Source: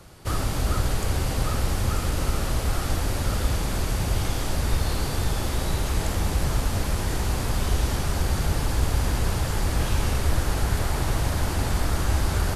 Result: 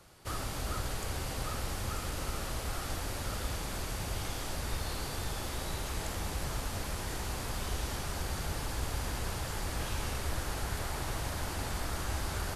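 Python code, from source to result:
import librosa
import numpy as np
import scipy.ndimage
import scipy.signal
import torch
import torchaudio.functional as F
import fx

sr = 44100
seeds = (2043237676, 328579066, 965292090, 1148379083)

y = fx.low_shelf(x, sr, hz=390.0, db=-6.5)
y = y * librosa.db_to_amplitude(-7.0)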